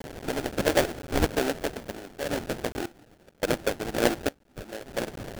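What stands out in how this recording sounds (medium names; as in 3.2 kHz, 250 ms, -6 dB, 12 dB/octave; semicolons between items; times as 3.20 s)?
phasing stages 4, 1.5 Hz, lowest notch 640–1300 Hz; a quantiser's noise floor 8-bit, dither triangular; random-step tremolo, depth 95%; aliases and images of a low sample rate 1.1 kHz, jitter 20%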